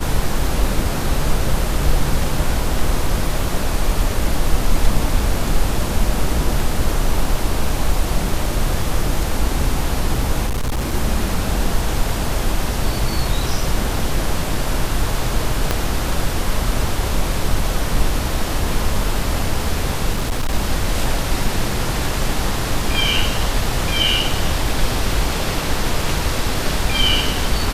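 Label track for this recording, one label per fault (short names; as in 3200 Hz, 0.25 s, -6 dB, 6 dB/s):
10.460000	10.940000	clipped -16.5 dBFS
15.710000	15.710000	pop -3 dBFS
20.120000	20.550000	clipped -15 dBFS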